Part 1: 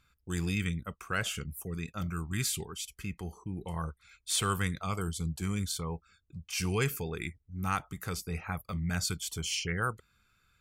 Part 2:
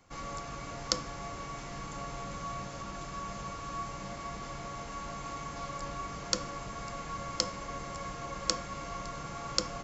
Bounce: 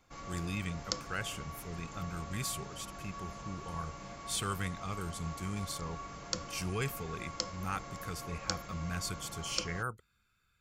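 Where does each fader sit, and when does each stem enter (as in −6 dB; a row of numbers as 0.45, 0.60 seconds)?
−5.5, −5.5 decibels; 0.00, 0.00 seconds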